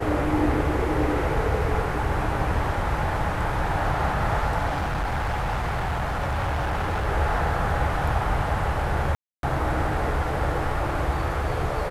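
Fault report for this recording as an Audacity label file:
4.670000	7.080000	clipping −22.5 dBFS
9.150000	9.430000	drop-out 282 ms

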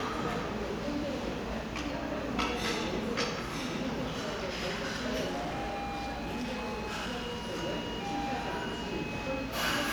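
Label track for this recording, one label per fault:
5.260000	7.590000	clipping −32 dBFS

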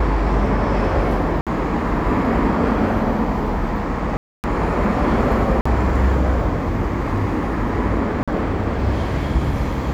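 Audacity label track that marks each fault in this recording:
1.410000	1.470000	drop-out 57 ms
4.170000	4.440000	drop-out 269 ms
5.610000	5.660000	drop-out 45 ms
8.230000	8.280000	drop-out 46 ms

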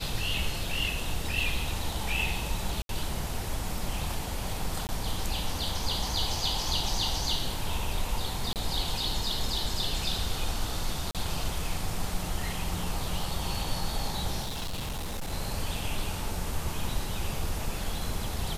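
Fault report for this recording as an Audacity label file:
2.820000	2.890000	drop-out 72 ms
4.870000	4.890000	drop-out 19 ms
8.530000	8.560000	drop-out 28 ms
11.110000	11.150000	drop-out 37 ms
14.410000	15.330000	clipping −30 dBFS

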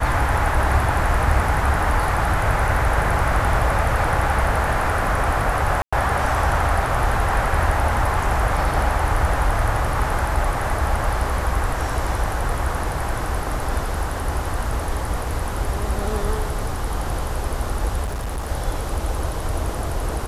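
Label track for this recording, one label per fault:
5.820000	5.920000	drop-out 105 ms
18.040000	18.500000	clipping −22.5 dBFS

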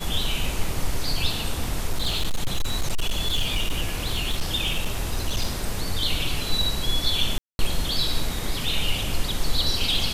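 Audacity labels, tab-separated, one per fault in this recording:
1.900000	5.460000	clipping −18 dBFS
7.380000	7.590000	drop-out 211 ms

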